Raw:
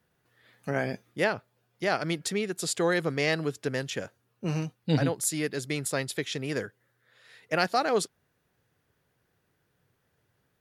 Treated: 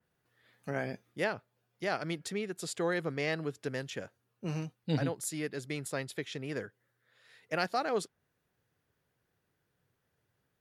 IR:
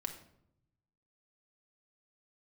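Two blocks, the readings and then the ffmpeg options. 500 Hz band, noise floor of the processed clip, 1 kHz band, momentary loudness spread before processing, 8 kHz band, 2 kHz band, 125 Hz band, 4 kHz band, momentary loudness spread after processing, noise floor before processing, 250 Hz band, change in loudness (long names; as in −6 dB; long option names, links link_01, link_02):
−6.0 dB, −80 dBFS, −6.0 dB, 9 LU, −9.5 dB, −6.5 dB, −6.0 dB, −8.0 dB, 10 LU, −75 dBFS, −6.0 dB, −6.5 dB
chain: -af "adynamicequalizer=threshold=0.00562:dfrequency=3400:dqfactor=0.7:tfrequency=3400:tqfactor=0.7:attack=5:release=100:ratio=0.375:range=3:mode=cutabove:tftype=highshelf,volume=-6dB"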